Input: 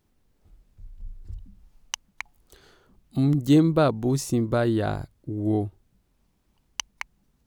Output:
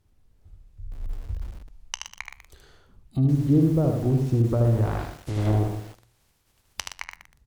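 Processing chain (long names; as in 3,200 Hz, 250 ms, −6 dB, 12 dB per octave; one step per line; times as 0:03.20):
0:04.63–0:06.94: compressing power law on the bin magnitudes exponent 0.41
treble cut that deepens with the level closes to 480 Hz, closed at −18 dBFS
low shelf with overshoot 140 Hz +7 dB, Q 1.5
flanger 0.3 Hz, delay 9.9 ms, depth 7.6 ms, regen −86%
single-tap delay 76 ms −5 dB
feedback echo at a low word length 120 ms, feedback 35%, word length 7 bits, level −9 dB
level +3 dB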